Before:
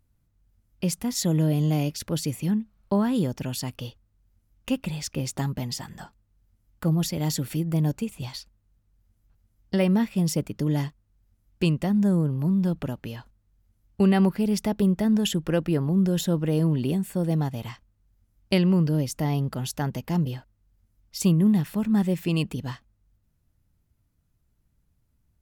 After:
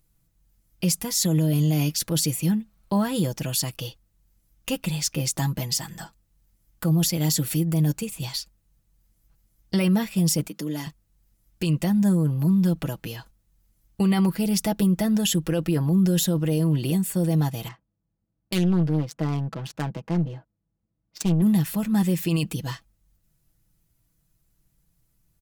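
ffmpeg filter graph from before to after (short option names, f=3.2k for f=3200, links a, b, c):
-filter_complex "[0:a]asettb=1/sr,asplit=3[a][b][c];[a]atrim=end=10.474[d];[b]atrim=start=10.47:end=10.87,asetpts=PTS-STARTPTS,afade=t=in:d=0.004:c=qsin,afade=t=out:st=0.396:d=0.004:c=qsin,highpass=f=190:w=0.5412,highpass=f=190:w=1.3066,acompressor=threshold=-36dB:ratio=1.5:attack=3.2:release=140:knee=1:detection=peak[e];[c]atrim=start=10.866[f];[d][e]acrossfade=d=0.004:c1=hsin:c2=qsin[g];[g][f]acrossfade=d=0.004:c1=qsin:c2=hsin,asettb=1/sr,asplit=3[h][i][j];[h]atrim=end=17.684[k];[i]atrim=start=17.68:end=21.42,asetpts=PTS-STARTPTS,afade=t=in:d=0.004:c=qsin,afade=t=out:st=3.736:d=0.004:c=qsin,highpass=120,adynamicsmooth=sensitivity=4.5:basefreq=940,aeval=exprs='(tanh(7.08*val(0)+0.5)-tanh(0.5))/7.08':c=same[l];[j]atrim=start=21.416[m];[k][l]acrossfade=d=0.004:c1=hsin:c2=qsin[n];[n][m]acrossfade=d=0.004:c1=qsin:c2=hsin,highshelf=f=4k:g=11,aecho=1:1:6.1:0.61,alimiter=limit=-13.5dB:level=0:latency=1:release=14"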